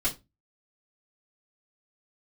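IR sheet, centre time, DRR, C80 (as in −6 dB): 12 ms, −8.5 dB, 23.5 dB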